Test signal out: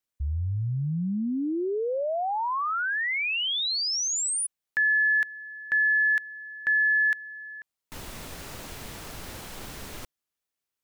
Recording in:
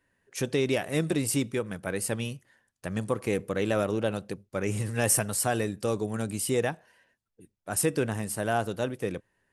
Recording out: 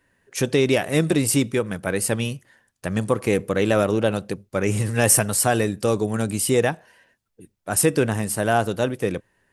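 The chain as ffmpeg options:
ffmpeg -i in.wav -af "asoftclip=type=hard:threshold=-12.5dB,volume=7.5dB" out.wav

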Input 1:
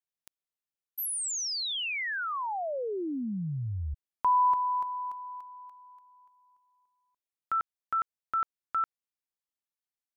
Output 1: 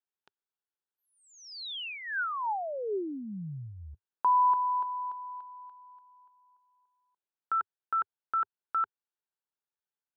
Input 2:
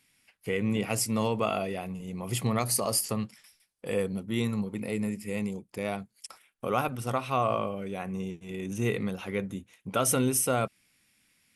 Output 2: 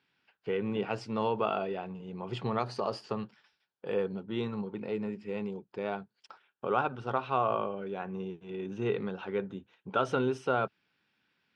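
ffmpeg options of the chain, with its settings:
ffmpeg -i in.wav -af "highpass=100,equalizer=frequency=100:width_type=q:width=4:gain=-5,equalizer=frequency=240:width_type=q:width=4:gain=-3,equalizer=frequency=400:width_type=q:width=4:gain=7,equalizer=frequency=880:width_type=q:width=4:gain=7,equalizer=frequency=1500:width_type=q:width=4:gain=8,equalizer=frequency=2100:width_type=q:width=4:gain=-8,lowpass=frequency=4000:width=0.5412,lowpass=frequency=4000:width=1.3066,volume=-4dB" out.wav

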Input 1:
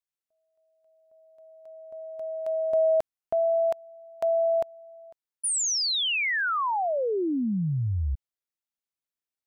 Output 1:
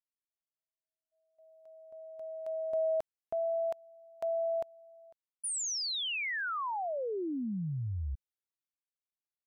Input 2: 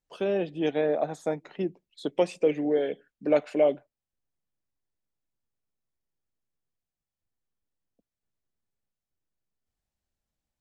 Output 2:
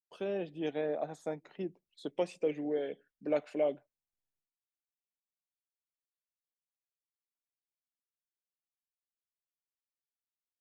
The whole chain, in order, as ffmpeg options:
ffmpeg -i in.wav -af "agate=range=-33dB:threshold=-52dB:ratio=3:release=350:detection=rms,volume=-8.5dB" out.wav

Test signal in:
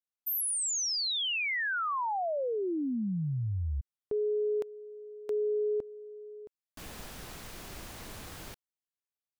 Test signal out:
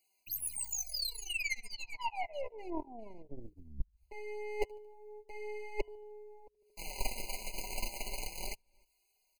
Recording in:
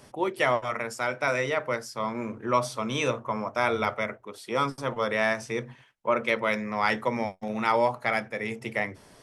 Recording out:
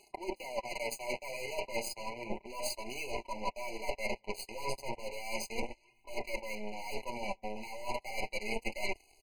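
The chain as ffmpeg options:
ffmpeg -i in.wav -af "aecho=1:1:5.2:0.77,volume=25dB,asoftclip=hard,volume=-25dB,aecho=1:1:75|150|225|300:0.0708|0.0404|0.023|0.0131,areverse,acompressor=threshold=-41dB:ratio=16:attack=88:release=93:knee=1:detection=rms,areverse,bandreject=frequency=50:width_type=h:width=6,bandreject=frequency=100:width_type=h:width=6,bandreject=frequency=150:width_type=h:width=6,aeval=exprs='0.0447*(cos(1*acos(clip(val(0)/0.0447,-1,1)))-cos(1*PI/2))+0.00141*(cos(4*acos(clip(val(0)/0.0447,-1,1)))-cos(4*PI/2))+0.0126*(cos(6*acos(clip(val(0)/0.0447,-1,1)))-cos(6*PI/2))+0.00708*(cos(7*acos(clip(val(0)/0.0447,-1,1)))-cos(7*PI/2))+0.00708*(cos(8*acos(clip(val(0)/0.0447,-1,1)))-cos(8*PI/2))':channel_layout=same,lowshelf=frequency=340:gain=-10.5,acompressor=mode=upward:threshold=-54dB:ratio=2.5:attack=0.12:release=139:knee=2.83:detection=peak,flanger=delay=2.7:depth=6.8:regen=-15:speed=0.33:shape=sinusoidal,asubboost=boost=6:cutoff=61,afftfilt=real='re*eq(mod(floor(b*sr/1024/1000),2),0)':imag='im*eq(mod(floor(b*sr/1024/1000),2),0)':win_size=1024:overlap=0.75,volume=12dB" out.wav

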